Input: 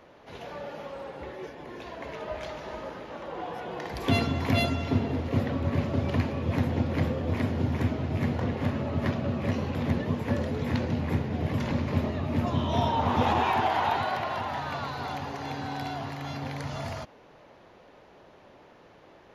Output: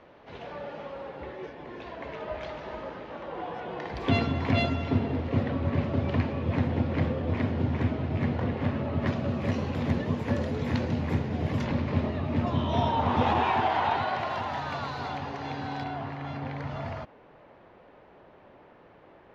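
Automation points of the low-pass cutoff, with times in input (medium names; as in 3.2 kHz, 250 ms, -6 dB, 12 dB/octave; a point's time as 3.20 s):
3.8 kHz
from 9.07 s 8.6 kHz
from 11.65 s 4.4 kHz
from 14.19 s 7.2 kHz
from 15.08 s 4.5 kHz
from 15.84 s 2.5 kHz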